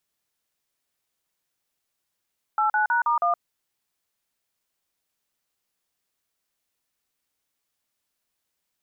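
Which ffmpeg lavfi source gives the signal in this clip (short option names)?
-f lavfi -i "aevalsrc='0.0841*clip(min(mod(t,0.16),0.119-mod(t,0.16))/0.002,0,1)*(eq(floor(t/0.16),0)*(sin(2*PI*852*mod(t,0.16))+sin(2*PI*1336*mod(t,0.16)))+eq(floor(t/0.16),1)*(sin(2*PI*852*mod(t,0.16))+sin(2*PI*1477*mod(t,0.16)))+eq(floor(t/0.16),2)*(sin(2*PI*941*mod(t,0.16))+sin(2*PI*1477*mod(t,0.16)))+eq(floor(t/0.16),3)*(sin(2*PI*941*mod(t,0.16))+sin(2*PI*1209*mod(t,0.16)))+eq(floor(t/0.16),4)*(sin(2*PI*697*mod(t,0.16))+sin(2*PI*1209*mod(t,0.16))))':d=0.8:s=44100"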